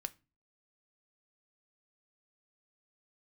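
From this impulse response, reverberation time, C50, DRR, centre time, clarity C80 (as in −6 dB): 0.30 s, 22.5 dB, 10.5 dB, 2 ms, 29.0 dB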